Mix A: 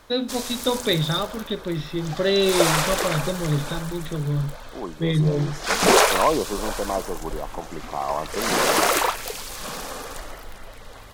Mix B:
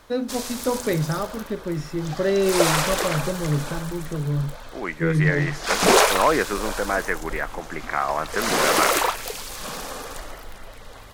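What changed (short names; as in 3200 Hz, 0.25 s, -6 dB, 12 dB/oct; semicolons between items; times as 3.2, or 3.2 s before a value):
first voice: remove synth low-pass 3600 Hz, resonance Q 14; second voice: remove Chebyshev band-stop 1100–5100 Hz, order 5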